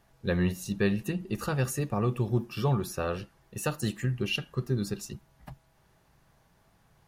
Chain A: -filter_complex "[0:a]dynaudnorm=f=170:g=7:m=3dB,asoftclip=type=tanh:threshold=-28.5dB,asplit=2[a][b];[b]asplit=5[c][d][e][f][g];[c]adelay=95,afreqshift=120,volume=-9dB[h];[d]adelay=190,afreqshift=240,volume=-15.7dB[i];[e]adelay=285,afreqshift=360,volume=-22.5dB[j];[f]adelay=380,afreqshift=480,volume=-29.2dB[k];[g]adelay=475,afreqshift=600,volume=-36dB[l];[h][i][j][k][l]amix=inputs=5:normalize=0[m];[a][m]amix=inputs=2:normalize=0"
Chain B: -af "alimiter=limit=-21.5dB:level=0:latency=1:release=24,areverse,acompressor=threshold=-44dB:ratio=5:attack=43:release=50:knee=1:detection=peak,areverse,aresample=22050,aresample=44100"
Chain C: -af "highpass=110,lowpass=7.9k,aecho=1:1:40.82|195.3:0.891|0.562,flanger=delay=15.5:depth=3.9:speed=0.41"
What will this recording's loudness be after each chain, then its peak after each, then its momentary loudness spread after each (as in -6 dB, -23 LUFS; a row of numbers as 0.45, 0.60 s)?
-33.5, -42.0, -31.0 LUFS; -22.5, -26.5, -13.5 dBFS; 8, 6, 7 LU